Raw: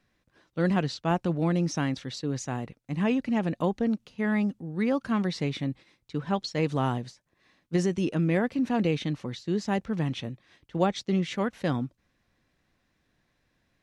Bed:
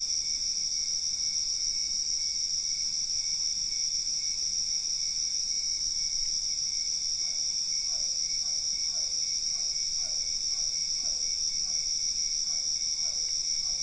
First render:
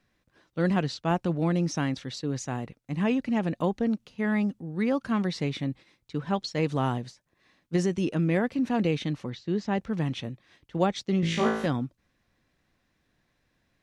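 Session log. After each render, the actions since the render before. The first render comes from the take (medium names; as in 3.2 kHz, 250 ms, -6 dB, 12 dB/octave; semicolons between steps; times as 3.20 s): 9.30–9.78 s: distance through air 110 m; 11.21–11.66 s: flutter echo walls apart 3.1 m, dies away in 0.67 s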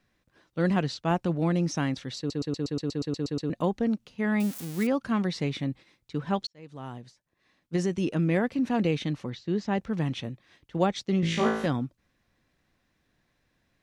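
2.18 s: stutter in place 0.12 s, 11 plays; 4.40–4.87 s: zero-crossing glitches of -25 dBFS; 6.47–8.11 s: fade in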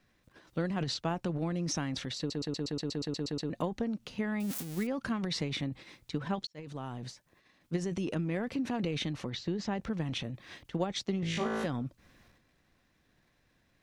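transient shaper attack +7 dB, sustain +11 dB; compression 2:1, threshold -38 dBFS, peak gain reduction 13.5 dB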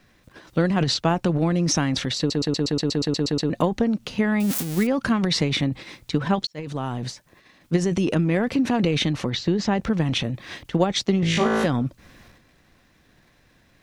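trim +12 dB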